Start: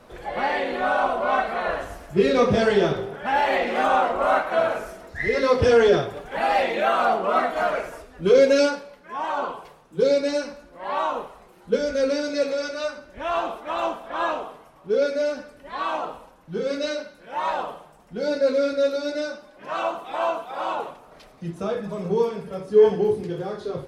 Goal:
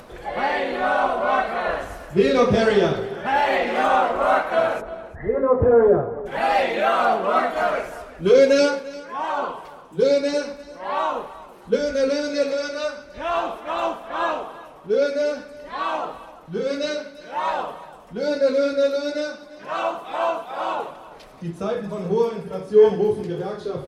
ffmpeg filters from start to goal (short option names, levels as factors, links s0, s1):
-filter_complex "[0:a]asplit=3[s0][s1][s2];[s0]afade=t=out:st=4.8:d=0.02[s3];[s1]lowpass=f=1200:w=0.5412,lowpass=f=1200:w=1.3066,afade=t=in:st=4.8:d=0.02,afade=t=out:st=6.25:d=0.02[s4];[s2]afade=t=in:st=6.25:d=0.02[s5];[s3][s4][s5]amix=inputs=3:normalize=0,aecho=1:1:345|690:0.126|0.0189,acompressor=mode=upward:threshold=0.01:ratio=2.5,volume=1.19"